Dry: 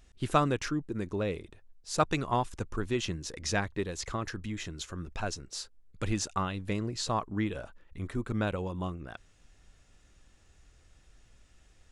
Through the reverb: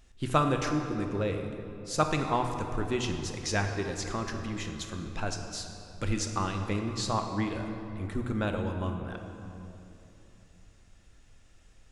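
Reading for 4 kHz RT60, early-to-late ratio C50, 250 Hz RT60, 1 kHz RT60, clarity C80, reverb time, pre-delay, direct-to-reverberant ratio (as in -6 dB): 1.8 s, 5.5 dB, 3.6 s, 2.8 s, 6.5 dB, 3.0 s, 3 ms, 4.0 dB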